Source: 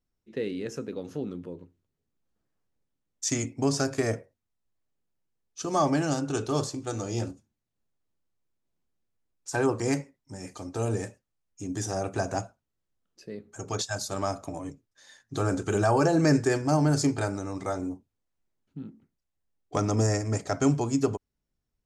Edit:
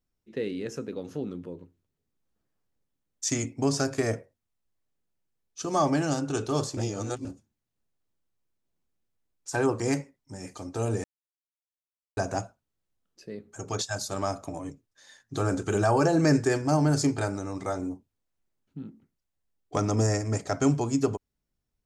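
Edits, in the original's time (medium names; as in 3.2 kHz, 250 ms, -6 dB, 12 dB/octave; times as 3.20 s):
6.77–7.25 s: reverse
11.04–12.17 s: mute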